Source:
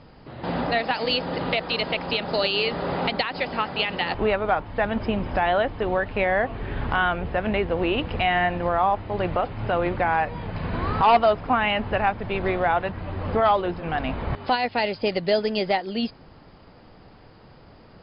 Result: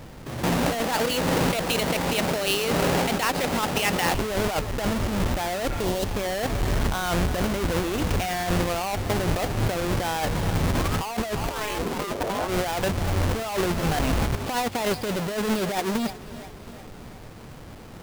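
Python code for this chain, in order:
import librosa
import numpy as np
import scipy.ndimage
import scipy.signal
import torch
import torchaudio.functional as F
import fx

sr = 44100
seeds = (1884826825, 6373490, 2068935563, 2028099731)

y = fx.halfwave_hold(x, sr)
y = fx.echo_feedback(y, sr, ms=351, feedback_pct=55, wet_db=-23)
y = fx.over_compress(y, sr, threshold_db=-23.0, ratio=-1.0)
y = fx.spec_repair(y, sr, seeds[0], start_s=5.73, length_s=0.3, low_hz=1100.0, high_hz=2700.0, source='both')
y = fx.ring_mod(y, sr, carrier_hz=fx.line((11.49, 170.0), (12.47, 740.0)), at=(11.49, 12.47), fade=0.02)
y = y * librosa.db_to_amplitude(-1.5)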